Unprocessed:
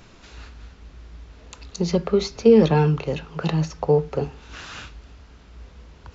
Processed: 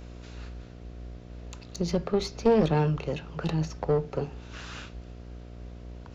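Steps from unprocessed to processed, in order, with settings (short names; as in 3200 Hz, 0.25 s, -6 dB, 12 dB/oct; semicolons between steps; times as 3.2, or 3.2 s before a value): one diode to ground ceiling -19 dBFS; buzz 60 Hz, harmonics 12, -39 dBFS -6 dB/oct; gain -4.5 dB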